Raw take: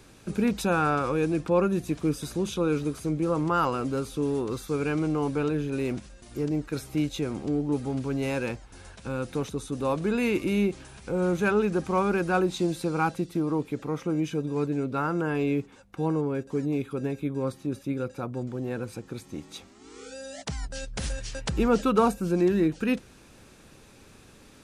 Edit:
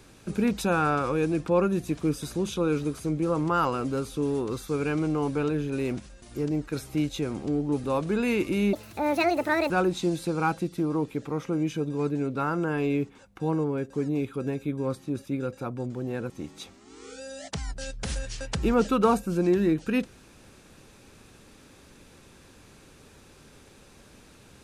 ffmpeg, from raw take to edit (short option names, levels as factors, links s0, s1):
-filter_complex "[0:a]asplit=5[s0][s1][s2][s3][s4];[s0]atrim=end=7.842[s5];[s1]atrim=start=9.788:end=10.684[s6];[s2]atrim=start=10.68:end=12.27,asetpts=PTS-STARTPTS,asetrate=72324,aresample=44100,atrim=end_sample=42755,asetpts=PTS-STARTPTS[s7];[s3]atrim=start=12.266:end=18.872[s8];[s4]atrim=start=19.238[s9];[s5][s6]acrossfade=d=0.004:c1=hsin:c2=hsin[s10];[s10][s7]acrossfade=d=0.004:c1=hsin:c2=hsin[s11];[s11][s8]acrossfade=d=0.004:c1=hsin:c2=hsin[s12];[s12][s9]acrossfade=d=0.004:c1=hsin:c2=hsin"